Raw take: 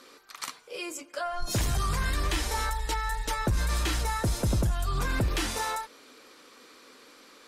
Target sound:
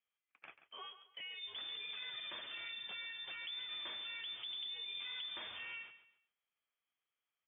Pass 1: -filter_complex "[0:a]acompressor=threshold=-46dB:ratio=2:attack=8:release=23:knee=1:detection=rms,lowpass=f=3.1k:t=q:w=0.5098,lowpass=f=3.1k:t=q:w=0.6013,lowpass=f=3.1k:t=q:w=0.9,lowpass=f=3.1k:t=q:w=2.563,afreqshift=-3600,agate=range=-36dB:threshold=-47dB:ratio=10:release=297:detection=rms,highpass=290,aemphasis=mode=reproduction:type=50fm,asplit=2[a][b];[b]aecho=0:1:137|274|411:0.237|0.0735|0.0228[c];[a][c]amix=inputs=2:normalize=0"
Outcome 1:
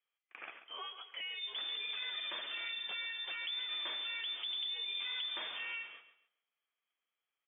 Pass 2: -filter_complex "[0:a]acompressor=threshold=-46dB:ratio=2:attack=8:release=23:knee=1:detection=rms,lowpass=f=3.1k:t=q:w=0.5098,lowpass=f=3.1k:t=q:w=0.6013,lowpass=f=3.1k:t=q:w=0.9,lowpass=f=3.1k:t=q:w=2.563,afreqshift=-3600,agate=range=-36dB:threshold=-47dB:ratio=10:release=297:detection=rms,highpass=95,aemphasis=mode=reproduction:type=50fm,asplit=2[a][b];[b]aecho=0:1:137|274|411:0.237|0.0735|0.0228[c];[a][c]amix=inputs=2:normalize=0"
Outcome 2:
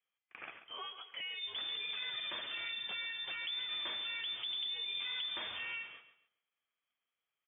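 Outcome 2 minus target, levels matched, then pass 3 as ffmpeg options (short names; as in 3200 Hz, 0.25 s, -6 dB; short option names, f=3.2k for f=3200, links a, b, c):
compressor: peak gain reduction -5 dB
-filter_complex "[0:a]acompressor=threshold=-56.5dB:ratio=2:attack=8:release=23:knee=1:detection=rms,lowpass=f=3.1k:t=q:w=0.5098,lowpass=f=3.1k:t=q:w=0.6013,lowpass=f=3.1k:t=q:w=0.9,lowpass=f=3.1k:t=q:w=2.563,afreqshift=-3600,agate=range=-36dB:threshold=-47dB:ratio=10:release=297:detection=rms,highpass=95,aemphasis=mode=reproduction:type=50fm,asplit=2[a][b];[b]aecho=0:1:137|274|411:0.237|0.0735|0.0228[c];[a][c]amix=inputs=2:normalize=0"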